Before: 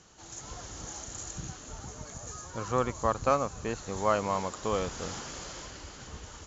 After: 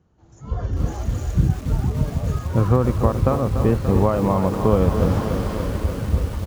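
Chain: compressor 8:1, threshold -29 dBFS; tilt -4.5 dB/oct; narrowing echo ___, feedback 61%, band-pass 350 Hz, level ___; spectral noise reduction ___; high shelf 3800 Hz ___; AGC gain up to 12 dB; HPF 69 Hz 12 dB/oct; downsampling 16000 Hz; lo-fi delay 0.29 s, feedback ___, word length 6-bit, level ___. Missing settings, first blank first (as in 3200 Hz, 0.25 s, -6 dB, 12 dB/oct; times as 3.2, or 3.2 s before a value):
0.272 s, -17 dB, 11 dB, -5.5 dB, 80%, -8.5 dB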